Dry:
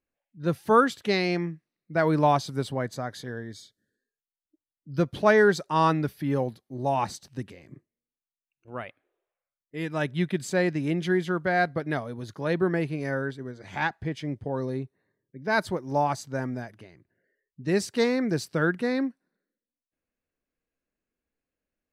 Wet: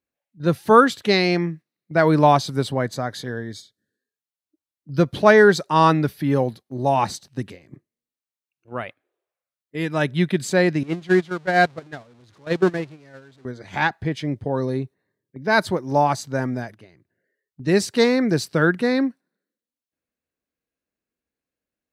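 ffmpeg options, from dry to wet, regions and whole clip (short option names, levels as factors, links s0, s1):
-filter_complex "[0:a]asettb=1/sr,asplit=3[s0][s1][s2];[s0]atrim=end=10.834[s3];[s1]atrim=start=10.83:end=13.45,asetpts=PTS-STARTPTS,afade=t=in:d=0.004:c=qsin,afade=t=out:st=2.616:d=0.004:c=qsin,aeval=exprs='val(0)+0.5*0.0299*sgn(val(0))':c=same,lowpass=7200,agate=range=0.1:threshold=0.0708:ratio=16:release=100:detection=peak[s4];[s2]atrim=start=13.446[s5];[s3][s4]acrossfade=d=0.004:c1=hsin:c2=qsin[s6];[s6][s5]acrossfade=d=0.004:c1=qsin:c2=hsin,highpass=59,equalizer=f=4000:t=o:w=0.28:g=3,agate=range=0.447:threshold=0.00631:ratio=16:detection=peak,volume=2.11"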